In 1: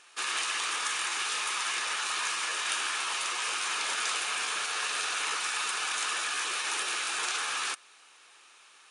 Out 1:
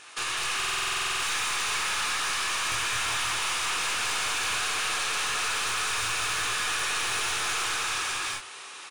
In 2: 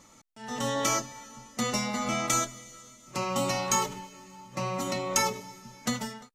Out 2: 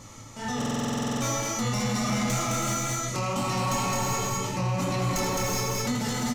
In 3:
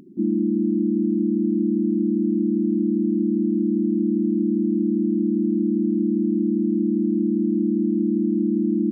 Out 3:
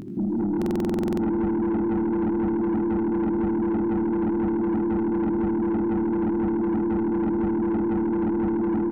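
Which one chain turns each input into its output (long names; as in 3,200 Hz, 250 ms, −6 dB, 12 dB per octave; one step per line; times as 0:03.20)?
stylus tracing distortion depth 0.03 ms
parametric band 110 Hz +12 dB 0.27 octaves
chorus effect 2 Hz, delay 19 ms, depth 6.4 ms
in parallel at −1 dB: downward compressor, threshold −32 dBFS
on the sum: mains-hum notches 50/100 Hz
on a send: multi-tap delay 82/213 ms −11/−3.5 dB
on the sum: reverb whose tail is shaped and stops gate 440 ms rising, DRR −1.5 dB
soft clipping −19 dBFS
brickwall limiter −28.5 dBFS
low-shelf EQ 140 Hz +7.5 dB
buffer that repeats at 0:00.57, samples 2,048, times 13
level +6 dB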